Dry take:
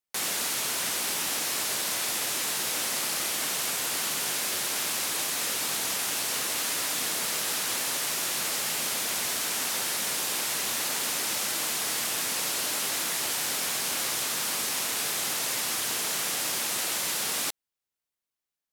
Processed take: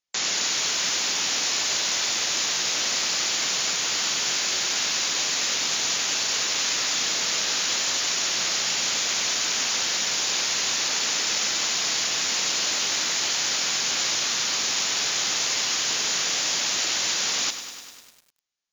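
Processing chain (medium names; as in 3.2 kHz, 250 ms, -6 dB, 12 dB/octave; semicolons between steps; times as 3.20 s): brick-wall FIR low-pass 7.2 kHz; treble shelf 2.3 kHz +9.5 dB; bit-crushed delay 100 ms, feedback 80%, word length 7-bit, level -11 dB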